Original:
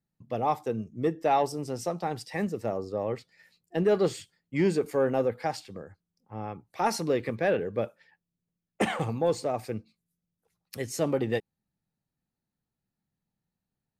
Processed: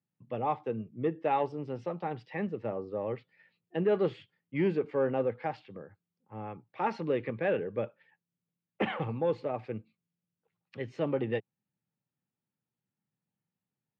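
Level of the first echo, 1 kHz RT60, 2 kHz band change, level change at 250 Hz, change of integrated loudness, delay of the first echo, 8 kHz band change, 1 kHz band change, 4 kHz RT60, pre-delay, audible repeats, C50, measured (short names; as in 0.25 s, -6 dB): none, none, -4.0 dB, -3.5 dB, -3.5 dB, none, under -30 dB, -4.5 dB, none, none, none, none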